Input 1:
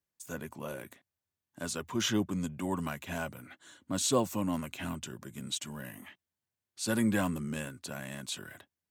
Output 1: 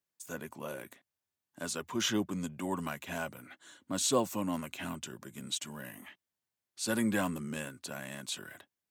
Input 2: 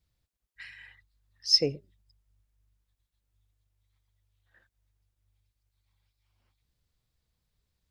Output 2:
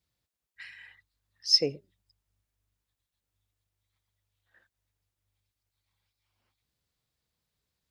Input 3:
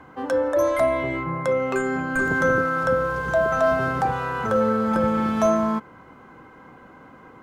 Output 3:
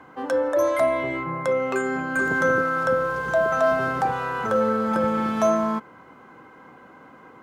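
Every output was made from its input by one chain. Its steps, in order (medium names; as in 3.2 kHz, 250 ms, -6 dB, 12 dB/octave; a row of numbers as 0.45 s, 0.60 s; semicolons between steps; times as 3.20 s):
high-pass 190 Hz 6 dB/octave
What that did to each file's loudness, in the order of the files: -1.0 LU, 0.0 LU, -0.5 LU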